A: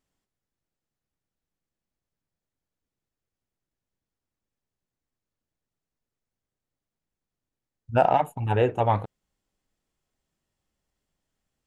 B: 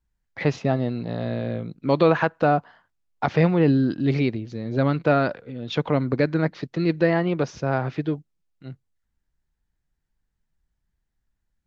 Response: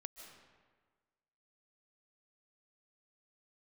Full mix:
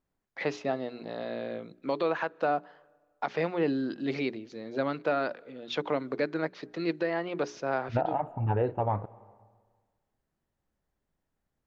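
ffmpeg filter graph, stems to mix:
-filter_complex "[0:a]lowpass=1400,volume=0.944,asplit=2[s0][s1];[s1]volume=0.178[s2];[1:a]highpass=320,bandreject=f=60:t=h:w=6,bandreject=f=120:t=h:w=6,bandreject=f=180:t=h:w=6,bandreject=f=240:t=h:w=6,bandreject=f=300:t=h:w=6,bandreject=f=360:t=h:w=6,bandreject=f=420:t=h:w=6,volume=0.596,asplit=3[s3][s4][s5];[s4]volume=0.0944[s6];[s5]apad=whole_len=514266[s7];[s0][s7]sidechaincompress=threshold=0.0112:ratio=3:attack=16:release=242[s8];[2:a]atrim=start_sample=2205[s9];[s2][s6]amix=inputs=2:normalize=0[s10];[s10][s9]afir=irnorm=-1:irlink=0[s11];[s8][s3][s11]amix=inputs=3:normalize=0,alimiter=limit=0.133:level=0:latency=1:release=374"

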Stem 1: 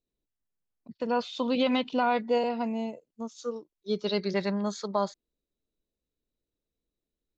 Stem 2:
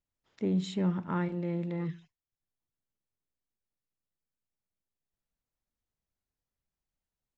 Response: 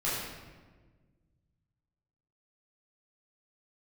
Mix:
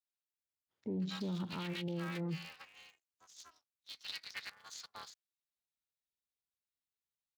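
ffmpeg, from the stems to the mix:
-filter_complex "[0:a]highpass=f=1500:w=0.5412,highpass=f=1500:w=1.3066,aeval=exprs='val(0)*sgn(sin(2*PI*160*n/s))':c=same,volume=0.473,asplit=2[s0][s1];[1:a]afwtdn=0.00501,adelay=450,volume=1[s2];[s1]apad=whole_len=345134[s3];[s2][s3]sidechaincompress=threshold=0.00562:ratio=8:attack=29:release=178[s4];[s0][s4]amix=inputs=2:normalize=0,highpass=53,alimiter=level_in=2.24:limit=0.0631:level=0:latency=1:release=98,volume=0.447"

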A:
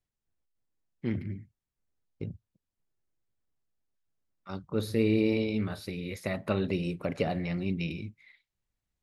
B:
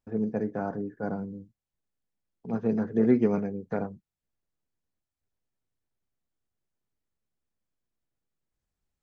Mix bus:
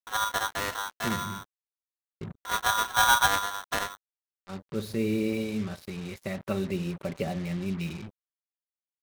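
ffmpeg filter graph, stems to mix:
-filter_complex "[0:a]aecho=1:1:5.2:0.48,volume=0.668[s0];[1:a]aeval=exprs='0.316*(cos(1*acos(clip(val(0)/0.316,-1,1)))-cos(1*PI/2))+0.00631*(cos(7*acos(clip(val(0)/0.316,-1,1)))-cos(7*PI/2))+0.0251*(cos(8*acos(clip(val(0)/0.316,-1,1)))-cos(8*PI/2))':c=same,equalizer=f=350:t=o:w=0.32:g=-8.5,aeval=exprs='val(0)*sgn(sin(2*PI*1200*n/s))':c=same,volume=1.19[s1];[s0][s1]amix=inputs=2:normalize=0,equalizer=f=76:w=1.1:g=6.5,acrusher=bits=6:mix=0:aa=0.5"

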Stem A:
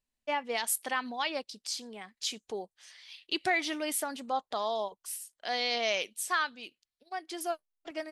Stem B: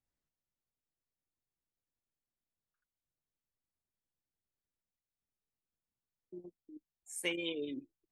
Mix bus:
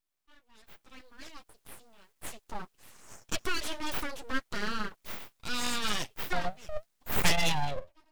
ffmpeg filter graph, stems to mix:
-filter_complex "[0:a]flanger=delay=6.3:depth=4.7:regen=-22:speed=1.8:shape=triangular,dynaudnorm=f=150:g=11:m=1.5,equalizer=f=1800:w=4.7:g=-10,volume=0.282,afade=t=in:st=2.11:d=0.47:silence=0.237137[s0];[1:a]highpass=f=170:w=0.5412,highpass=f=170:w=1.3066,aeval=exprs='0.1*sin(PI/2*2.24*val(0)/0.1)':c=same,flanger=delay=4.5:depth=7.3:regen=66:speed=0.71:shape=sinusoidal,volume=1.19,asplit=2[s1][s2];[s2]apad=whole_len=357714[s3];[s0][s3]sidechaincompress=threshold=0.00398:ratio=4:attack=42:release=405[s4];[s4][s1]amix=inputs=2:normalize=0,dynaudnorm=f=110:g=17:m=4.47,aeval=exprs='abs(val(0))':c=same"

